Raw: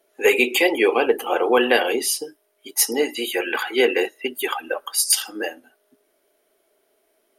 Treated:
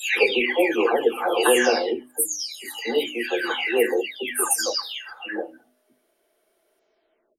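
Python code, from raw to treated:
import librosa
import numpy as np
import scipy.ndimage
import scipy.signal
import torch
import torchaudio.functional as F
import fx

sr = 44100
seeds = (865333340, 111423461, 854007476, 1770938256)

y = fx.spec_delay(x, sr, highs='early', ms=594)
y = fx.high_shelf(y, sr, hz=11000.0, db=-7.0)
y = fx.hum_notches(y, sr, base_hz=50, count=6)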